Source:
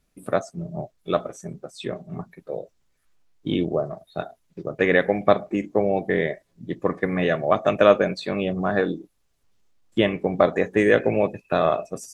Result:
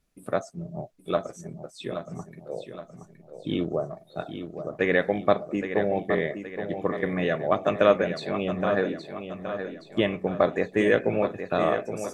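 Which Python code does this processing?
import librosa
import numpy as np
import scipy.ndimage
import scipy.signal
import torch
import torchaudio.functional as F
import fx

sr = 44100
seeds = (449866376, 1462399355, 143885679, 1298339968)

y = fx.echo_feedback(x, sr, ms=820, feedback_pct=47, wet_db=-9)
y = y * librosa.db_to_amplitude(-4.0)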